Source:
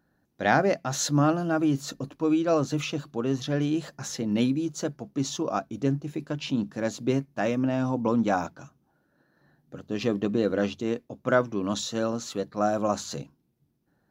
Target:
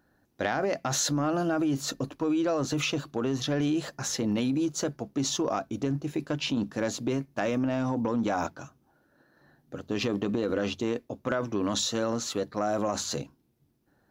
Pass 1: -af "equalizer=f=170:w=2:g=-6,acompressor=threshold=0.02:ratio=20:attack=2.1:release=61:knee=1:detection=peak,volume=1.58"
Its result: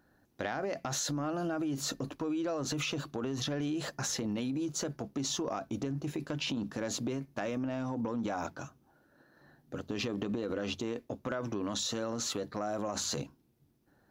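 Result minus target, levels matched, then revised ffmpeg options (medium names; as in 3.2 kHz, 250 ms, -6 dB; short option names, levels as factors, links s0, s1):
compression: peak gain reduction +7 dB
-af "equalizer=f=170:w=2:g=-6,acompressor=threshold=0.0473:ratio=20:attack=2.1:release=61:knee=1:detection=peak,volume=1.58"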